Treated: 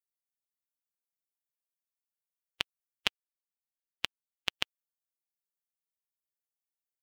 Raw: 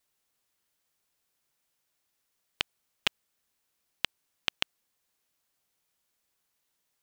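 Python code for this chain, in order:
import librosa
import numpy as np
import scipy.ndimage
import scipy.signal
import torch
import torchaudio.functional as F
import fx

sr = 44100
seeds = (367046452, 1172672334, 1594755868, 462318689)

y = fx.bin_expand(x, sr, power=1.5)
y = fx.level_steps(y, sr, step_db=10, at=(3.07, 4.54))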